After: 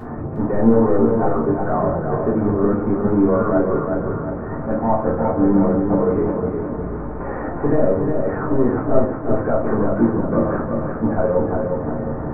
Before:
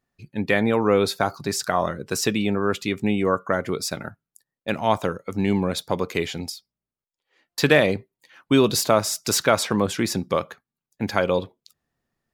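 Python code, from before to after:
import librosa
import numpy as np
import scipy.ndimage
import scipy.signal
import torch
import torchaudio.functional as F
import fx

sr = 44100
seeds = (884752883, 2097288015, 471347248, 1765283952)

p1 = fx.delta_mod(x, sr, bps=32000, step_db=-20.5)
p2 = scipy.signal.sosfilt(scipy.signal.butter(2, 63.0, 'highpass', fs=sr, output='sos'), p1)
p3 = fx.low_shelf(p2, sr, hz=250.0, db=-3.5)
p4 = fx.leveller(p3, sr, passes=5)
p5 = fx.level_steps(p4, sr, step_db=10)
p6 = p4 + F.gain(torch.from_numpy(p5), 2.0).numpy()
p7 = fx.power_curve(p6, sr, exponent=2.0)
p8 = scipy.ndimage.gaussian_filter1d(p7, 8.5, mode='constant')
p9 = p8 + fx.echo_feedback(p8, sr, ms=359, feedback_pct=46, wet_db=-5, dry=0)
p10 = fx.room_shoebox(p9, sr, seeds[0], volume_m3=250.0, walls='furnished', distance_m=3.4)
y = F.gain(torch.from_numpy(p10), -16.0).numpy()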